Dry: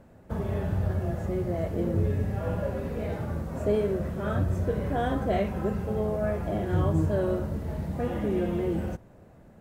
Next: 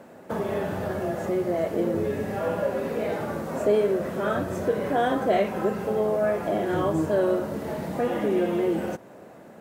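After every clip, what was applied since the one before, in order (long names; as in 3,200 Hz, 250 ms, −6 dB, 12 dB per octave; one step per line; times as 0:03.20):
high-pass filter 280 Hz 12 dB per octave
in parallel at +1.5 dB: downward compressor, threshold −40 dBFS, peak gain reduction 16.5 dB
on the sum: level +4 dB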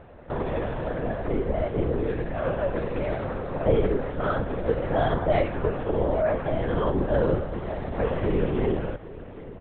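single-tap delay 797 ms −17 dB
linear-prediction vocoder at 8 kHz whisper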